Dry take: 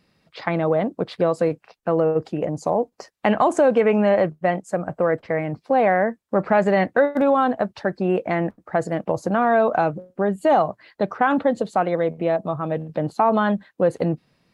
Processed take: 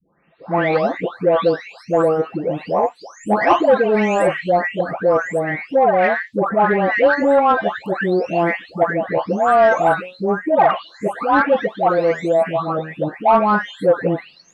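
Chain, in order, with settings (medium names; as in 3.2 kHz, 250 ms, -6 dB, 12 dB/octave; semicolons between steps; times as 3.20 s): delay that grows with frequency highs late, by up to 690 ms; overdrive pedal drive 12 dB, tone 3.1 kHz, clips at -5 dBFS; trim +3 dB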